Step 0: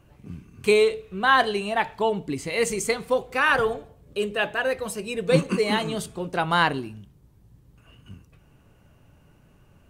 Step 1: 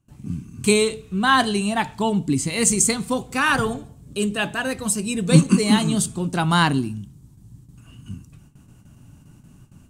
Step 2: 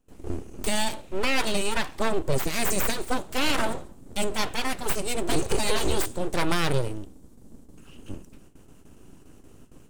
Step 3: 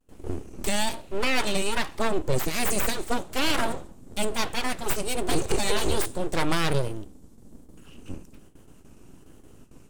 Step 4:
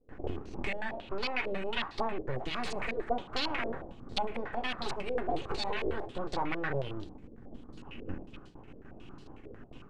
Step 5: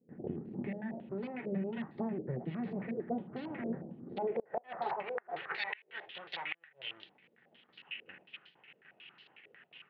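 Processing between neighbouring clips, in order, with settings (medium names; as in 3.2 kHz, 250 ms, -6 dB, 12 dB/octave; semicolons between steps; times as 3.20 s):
gate with hold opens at -47 dBFS; graphic EQ 125/250/500/2000/8000 Hz +6/+8/-10/-5/+11 dB; trim +4 dB
peak limiter -12 dBFS, peak gain reduction 10.5 dB; full-wave rectifier
vibrato 1.2 Hz 84 cents
compression 6:1, threshold -31 dBFS, peak gain reduction 13.5 dB; on a send at -7 dB: reverberation RT60 0.45 s, pre-delay 3 ms; on the sum: step-sequenced low-pass 11 Hz 500–4300 Hz
band-pass sweep 230 Hz -> 2.9 kHz, 3.86–5.92 s; cabinet simulation 120–3800 Hz, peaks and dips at 160 Hz +9 dB, 280 Hz -9 dB, 1.1 kHz -6 dB, 1.9 kHz +8 dB; inverted gate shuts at -32 dBFS, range -29 dB; trim +8.5 dB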